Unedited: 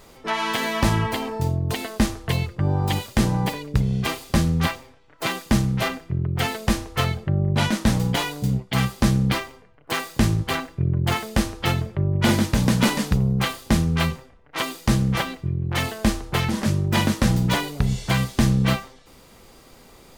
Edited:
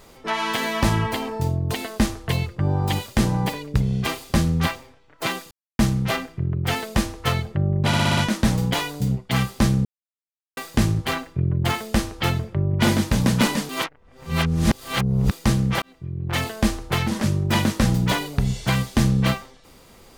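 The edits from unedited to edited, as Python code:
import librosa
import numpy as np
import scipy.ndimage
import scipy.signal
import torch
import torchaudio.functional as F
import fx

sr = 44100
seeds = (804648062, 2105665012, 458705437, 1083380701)

y = fx.edit(x, sr, fx.insert_silence(at_s=5.51, length_s=0.28),
    fx.stutter(start_s=7.59, slice_s=0.06, count=6),
    fx.silence(start_s=9.27, length_s=0.72),
    fx.reverse_span(start_s=13.11, length_s=1.62),
    fx.fade_in_span(start_s=15.24, length_s=0.54), tone=tone)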